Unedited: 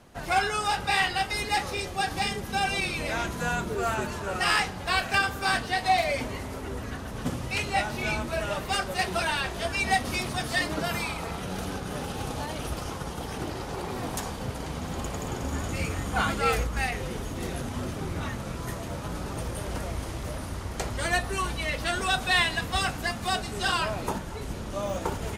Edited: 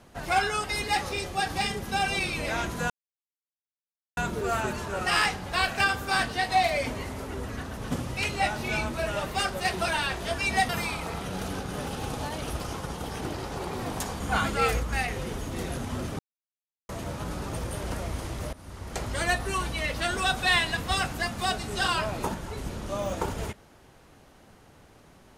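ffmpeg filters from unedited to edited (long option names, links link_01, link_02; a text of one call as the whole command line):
ffmpeg -i in.wav -filter_complex "[0:a]asplit=8[link_01][link_02][link_03][link_04][link_05][link_06][link_07][link_08];[link_01]atrim=end=0.642[link_09];[link_02]atrim=start=1.248:end=3.51,asetpts=PTS-STARTPTS,afade=type=out:start_time=2.258:duration=0.004:curve=hsin,apad=pad_dur=1.27[link_10];[link_03]atrim=start=3.51:end=10.032,asetpts=PTS-STARTPTS,afade=type=in:duration=0.004:curve=hsin[link_11];[link_04]atrim=start=10.858:end=14.372[link_12];[link_05]atrim=start=16.038:end=18.03,asetpts=PTS-STARTPTS,afade=type=out:start_time=1.988:duration=0.004:curve=hsin[link_13];[link_06]atrim=start=18.03:end=18.73,asetpts=PTS-STARTPTS,volume=0[link_14];[link_07]atrim=start=18.73:end=20.37,asetpts=PTS-STARTPTS,afade=type=in:duration=0.004:curve=hsin,afade=type=out:start_time=1.636:duration=0.004:curve=hsin:silence=0.133352[link_15];[link_08]atrim=start=20.37,asetpts=PTS-STARTPTS,afade=type=in:duration=0.56:silence=0.133352[link_16];[link_10][link_11]concat=n=2:v=0:a=1[link_17];[link_09][link_17]acrossfade=duration=0.004:curve1=hsin:curve2=hsin[link_18];[link_18][link_12]acrossfade=duration=0.004:curve1=hsin:curve2=hsin[link_19];[link_13][link_14][link_15][link_16]concat=n=4:v=0:a=1[link_20];[link_19][link_20]acrossfade=duration=0.004:curve1=hsin:curve2=hsin" out.wav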